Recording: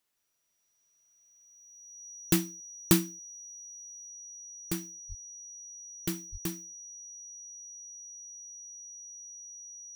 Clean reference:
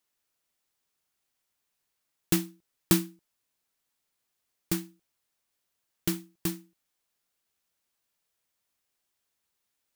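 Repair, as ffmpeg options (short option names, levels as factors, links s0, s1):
-filter_complex "[0:a]bandreject=f=5800:w=30,asplit=3[s0][s1][s2];[s0]afade=t=out:st=5.08:d=0.02[s3];[s1]highpass=f=140:w=0.5412,highpass=f=140:w=1.3066,afade=t=in:st=5.08:d=0.02,afade=t=out:st=5.2:d=0.02[s4];[s2]afade=t=in:st=5.2:d=0.02[s5];[s3][s4][s5]amix=inputs=3:normalize=0,asplit=3[s6][s7][s8];[s6]afade=t=out:st=6.31:d=0.02[s9];[s7]highpass=f=140:w=0.5412,highpass=f=140:w=1.3066,afade=t=in:st=6.31:d=0.02,afade=t=out:st=6.43:d=0.02[s10];[s8]afade=t=in:st=6.43:d=0.02[s11];[s9][s10][s11]amix=inputs=3:normalize=0,asetnsamples=n=441:p=0,asendcmd='4.09 volume volume 4dB',volume=1"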